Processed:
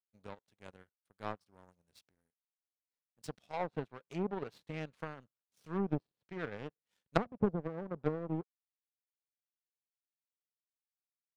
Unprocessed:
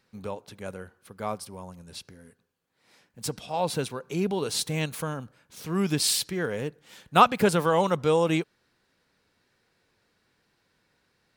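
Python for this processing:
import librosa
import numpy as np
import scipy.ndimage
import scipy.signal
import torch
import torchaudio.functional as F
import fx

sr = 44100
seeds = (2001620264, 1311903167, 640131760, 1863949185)

y = fx.env_lowpass_down(x, sr, base_hz=330.0, full_db=-19.5)
y = fx.power_curve(y, sr, exponent=2.0)
y = y * 10.0 ** (1.0 / 20.0)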